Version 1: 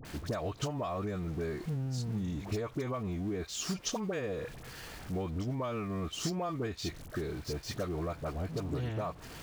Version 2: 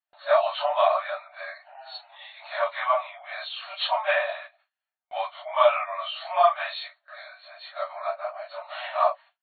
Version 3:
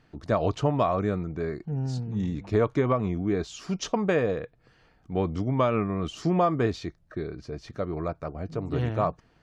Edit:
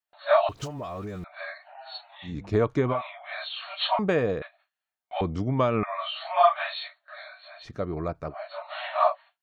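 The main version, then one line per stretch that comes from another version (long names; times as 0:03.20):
2
0:00.49–0:01.24: punch in from 1
0:02.30–0:02.94: punch in from 3, crossfade 0.16 s
0:03.99–0:04.42: punch in from 3
0:05.21–0:05.83: punch in from 3
0:07.64–0:08.32: punch in from 3, crossfade 0.06 s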